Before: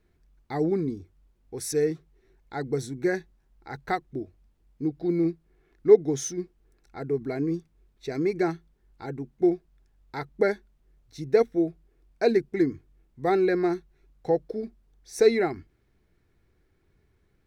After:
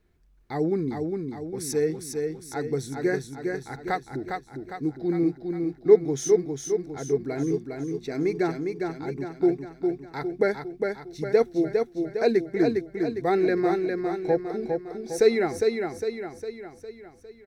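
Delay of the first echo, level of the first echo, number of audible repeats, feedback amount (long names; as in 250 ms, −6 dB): 406 ms, −4.5 dB, 6, 52%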